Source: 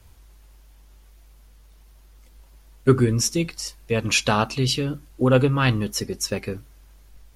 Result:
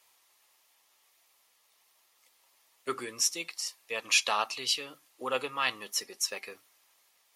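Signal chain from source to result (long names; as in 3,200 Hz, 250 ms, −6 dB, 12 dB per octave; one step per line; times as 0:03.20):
high-pass filter 890 Hz 12 dB per octave
notch filter 1,500 Hz, Q 5.9
level −3.5 dB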